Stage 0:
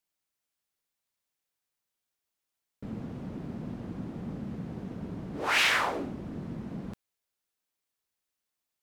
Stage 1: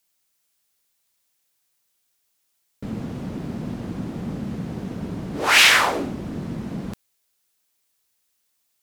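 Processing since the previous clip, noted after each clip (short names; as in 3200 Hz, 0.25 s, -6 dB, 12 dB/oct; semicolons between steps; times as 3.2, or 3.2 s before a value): high shelf 3200 Hz +8 dB; gain +8 dB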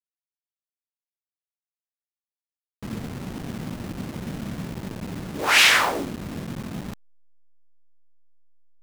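level-crossing sampler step -29 dBFS; gain -2 dB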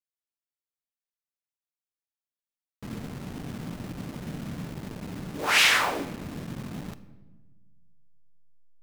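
reverb RT60 1.3 s, pre-delay 7 ms, DRR 11.5 dB; gain -4.5 dB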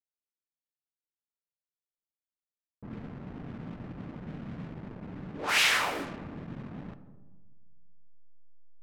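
digital reverb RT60 1.2 s, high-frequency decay 0.5×, pre-delay 95 ms, DRR 13.5 dB; low-pass opened by the level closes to 660 Hz, open at -24 dBFS; gain -4.5 dB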